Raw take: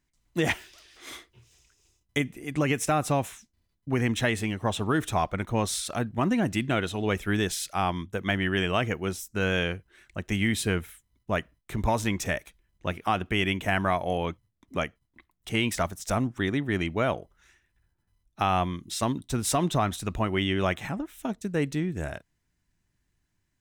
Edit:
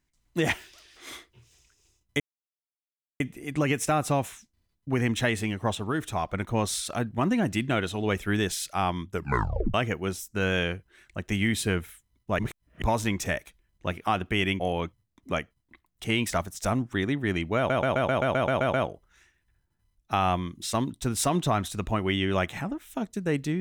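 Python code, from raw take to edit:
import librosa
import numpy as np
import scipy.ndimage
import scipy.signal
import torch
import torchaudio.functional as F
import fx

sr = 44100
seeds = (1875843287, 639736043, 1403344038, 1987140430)

y = fx.edit(x, sr, fx.insert_silence(at_s=2.2, length_s=1.0),
    fx.clip_gain(start_s=4.75, length_s=0.54, db=-3.5),
    fx.tape_stop(start_s=8.11, length_s=0.63),
    fx.reverse_span(start_s=11.39, length_s=0.43),
    fx.cut(start_s=13.6, length_s=0.45),
    fx.stutter(start_s=17.02, slice_s=0.13, count=10), tone=tone)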